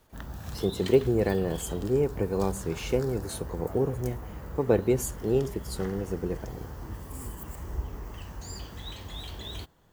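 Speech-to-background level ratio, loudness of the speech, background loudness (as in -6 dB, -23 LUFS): 11.5 dB, -29.0 LUFS, -40.5 LUFS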